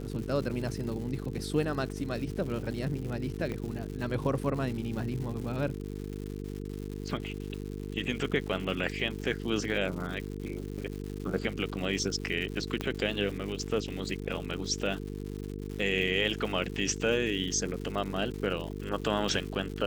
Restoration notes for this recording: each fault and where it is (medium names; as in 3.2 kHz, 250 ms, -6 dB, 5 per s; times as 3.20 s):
buzz 50 Hz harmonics 9 -38 dBFS
crackle 220 per s -38 dBFS
3.52 s: pop -23 dBFS
12.81 s: pop -17 dBFS